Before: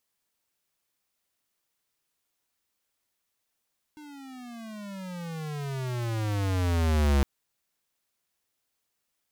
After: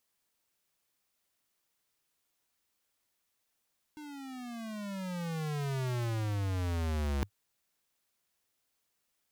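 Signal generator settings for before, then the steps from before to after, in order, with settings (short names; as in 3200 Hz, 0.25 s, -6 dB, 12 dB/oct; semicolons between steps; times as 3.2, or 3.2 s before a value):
gliding synth tone square, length 3.26 s, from 305 Hz, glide -26 st, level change +25 dB, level -21 dB
dynamic EQ 100 Hz, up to +4 dB, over -40 dBFS, Q 7.5; reverse; compressor 10:1, threshold -32 dBFS; reverse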